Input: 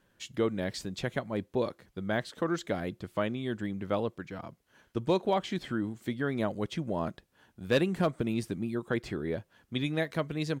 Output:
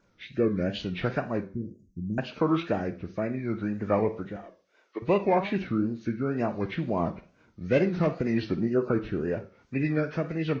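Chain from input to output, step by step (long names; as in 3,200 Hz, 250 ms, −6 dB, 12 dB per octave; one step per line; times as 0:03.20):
hearing-aid frequency compression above 1,100 Hz 1.5 to 1
0:04.36–0:05.02: high-pass filter 370 Hz 24 dB per octave
rotating-speaker cabinet horn 0.7 Hz, later 5 Hz, at 0:09.00
0:01.44–0:02.18: inverse Chebyshev band-stop filter 760–3,000 Hz, stop band 60 dB
0:08.25–0:08.90: parametric band 710 Hz +1 dB → +11.5 dB 2.1 octaves
four-comb reverb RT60 0.38 s, combs from 32 ms, DRR 10.5 dB
tape wow and flutter 110 cents
level +5.5 dB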